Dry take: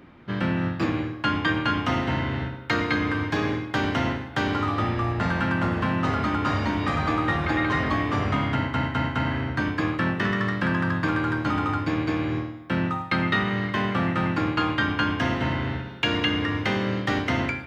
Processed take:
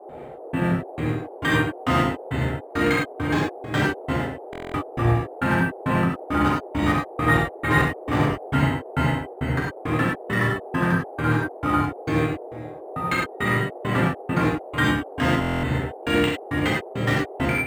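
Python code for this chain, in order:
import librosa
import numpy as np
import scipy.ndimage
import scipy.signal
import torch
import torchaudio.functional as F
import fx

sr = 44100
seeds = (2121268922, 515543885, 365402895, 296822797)

y = fx.step_gate(x, sr, bpm=169, pattern='.xx...xx..', floor_db=-60.0, edge_ms=4.5)
y = fx.dmg_noise_band(y, sr, seeds[0], low_hz=350.0, high_hz=770.0, level_db=-44.0)
y = fx.rev_gated(y, sr, seeds[1], gate_ms=130, shape='flat', drr_db=-5.0)
y = fx.buffer_glitch(y, sr, at_s=(4.51, 15.4), block=1024, repeats=9)
y = np.interp(np.arange(len(y)), np.arange(len(y))[::4], y[::4])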